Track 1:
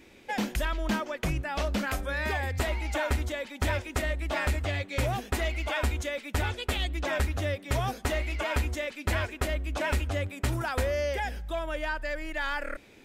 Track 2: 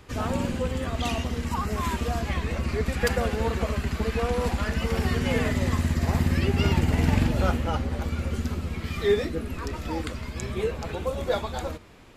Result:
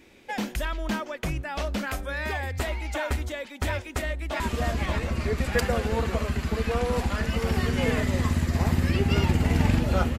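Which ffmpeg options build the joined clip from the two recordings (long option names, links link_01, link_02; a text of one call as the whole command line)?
ffmpeg -i cue0.wav -i cue1.wav -filter_complex "[0:a]apad=whole_dur=10.18,atrim=end=10.18,atrim=end=4.402[link_01];[1:a]atrim=start=1.878:end=7.66[link_02];[link_01][link_02]acrossfade=duration=0.004:curve1=hsin:curve2=hsin,asplit=2[link_03][link_04];[link_04]afade=type=in:start_time=4.03:duration=0.01,afade=type=out:start_time=4.4:duration=0.01,aecho=0:1:580|1160|1740|2320|2900:0.707946|0.247781|0.0867234|0.0303532|0.0106236[link_05];[link_03][link_05]amix=inputs=2:normalize=0" out.wav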